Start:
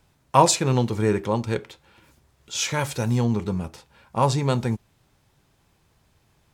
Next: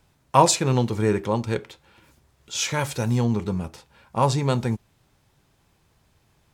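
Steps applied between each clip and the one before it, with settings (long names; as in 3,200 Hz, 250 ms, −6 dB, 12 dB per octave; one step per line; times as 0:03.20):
no processing that can be heard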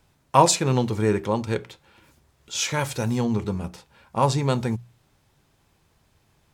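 mains-hum notches 60/120/180 Hz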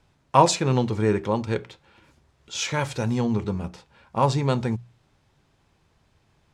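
high-frequency loss of the air 57 metres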